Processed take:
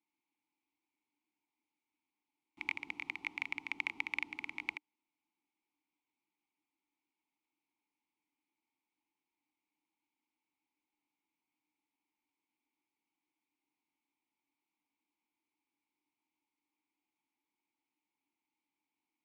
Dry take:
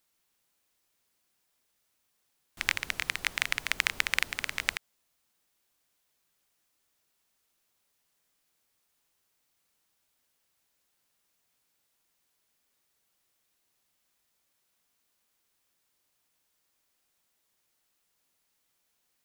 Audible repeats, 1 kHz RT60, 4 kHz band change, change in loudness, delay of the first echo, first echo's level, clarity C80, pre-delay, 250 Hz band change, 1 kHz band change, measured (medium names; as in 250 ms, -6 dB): no echo, no reverb, -16.5 dB, -9.5 dB, no echo, no echo, no reverb, no reverb, -1.5 dB, -9.5 dB